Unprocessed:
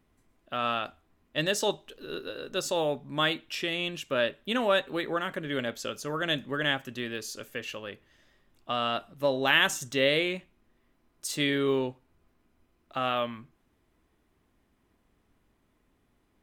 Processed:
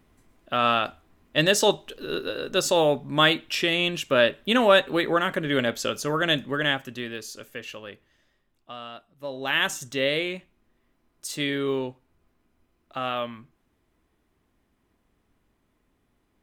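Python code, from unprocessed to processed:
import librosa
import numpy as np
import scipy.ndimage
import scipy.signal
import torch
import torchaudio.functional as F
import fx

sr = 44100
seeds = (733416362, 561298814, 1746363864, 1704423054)

y = fx.gain(x, sr, db=fx.line((6.04, 7.5), (7.33, -0.5), (7.91, -0.5), (9.07, -12.5), (9.62, 0.0)))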